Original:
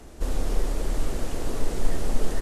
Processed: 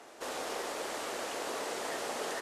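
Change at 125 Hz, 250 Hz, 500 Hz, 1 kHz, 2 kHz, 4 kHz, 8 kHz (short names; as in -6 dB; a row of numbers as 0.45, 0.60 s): -28.5, -11.0, -3.0, +2.0, +3.0, +1.5, -1.0 dB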